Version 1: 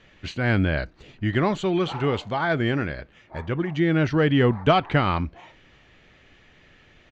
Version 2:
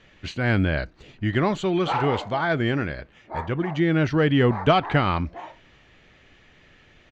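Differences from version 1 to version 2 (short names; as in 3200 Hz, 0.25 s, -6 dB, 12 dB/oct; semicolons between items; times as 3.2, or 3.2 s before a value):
background +10.5 dB; master: add high shelf 12000 Hz +5.5 dB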